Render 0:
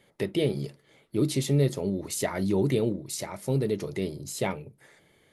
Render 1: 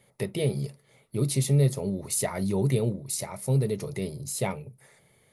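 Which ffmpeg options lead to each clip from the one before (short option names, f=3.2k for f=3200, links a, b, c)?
-af "equalizer=f=125:t=o:w=0.33:g=7,equalizer=f=315:t=o:w=0.33:g=-11,equalizer=f=1.6k:t=o:w=0.33:g=-6,equalizer=f=3.15k:t=o:w=0.33:g=-5,equalizer=f=10k:t=o:w=0.33:g=10"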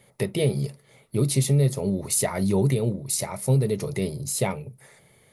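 -af "alimiter=limit=-17dB:level=0:latency=1:release=305,volume=5dB"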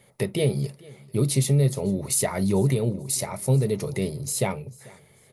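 -af "aecho=1:1:442|884:0.0668|0.0207"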